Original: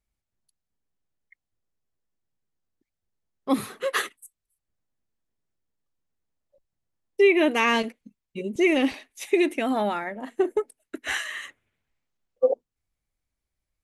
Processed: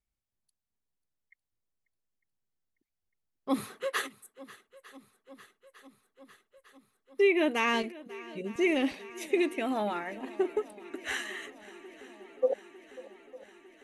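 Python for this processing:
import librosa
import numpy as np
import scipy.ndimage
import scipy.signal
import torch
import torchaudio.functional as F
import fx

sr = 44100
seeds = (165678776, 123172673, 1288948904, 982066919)

y = fx.echo_swing(x, sr, ms=902, ratio=1.5, feedback_pct=68, wet_db=-20)
y = y * 10.0 ** (-6.0 / 20.0)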